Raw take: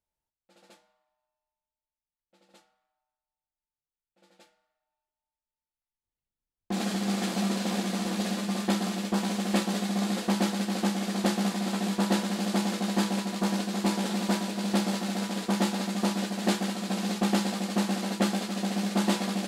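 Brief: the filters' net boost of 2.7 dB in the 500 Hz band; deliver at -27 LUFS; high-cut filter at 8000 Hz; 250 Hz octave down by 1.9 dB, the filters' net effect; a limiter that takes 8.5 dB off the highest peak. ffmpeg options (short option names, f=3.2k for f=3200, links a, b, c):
-af "lowpass=8k,equalizer=f=250:t=o:g=-3.5,equalizer=f=500:t=o:g=4.5,volume=4dB,alimiter=limit=-16dB:level=0:latency=1"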